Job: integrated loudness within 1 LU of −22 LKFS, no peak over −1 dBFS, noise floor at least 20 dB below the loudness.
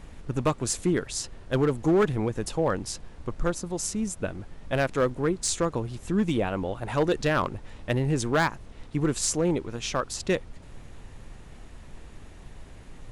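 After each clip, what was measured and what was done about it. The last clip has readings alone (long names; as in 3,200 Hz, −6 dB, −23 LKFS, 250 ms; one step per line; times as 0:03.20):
share of clipped samples 0.8%; peaks flattened at −16.5 dBFS; background noise floor −46 dBFS; target noise floor −48 dBFS; integrated loudness −27.5 LKFS; sample peak −16.5 dBFS; target loudness −22.0 LKFS
→ clipped peaks rebuilt −16.5 dBFS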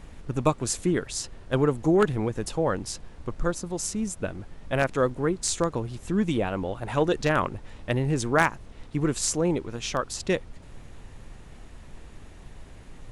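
share of clipped samples 0.0%; background noise floor −46 dBFS; target noise floor −47 dBFS
→ noise reduction from a noise print 6 dB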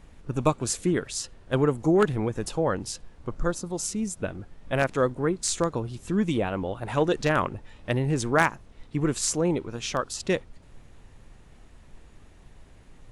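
background noise floor −52 dBFS; integrated loudness −27.0 LKFS; sample peak −7.5 dBFS; target loudness −22.0 LKFS
→ level +5 dB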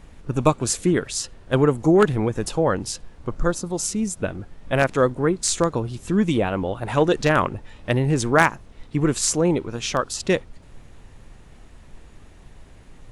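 integrated loudness −22.0 LKFS; sample peak −2.5 dBFS; background noise floor −47 dBFS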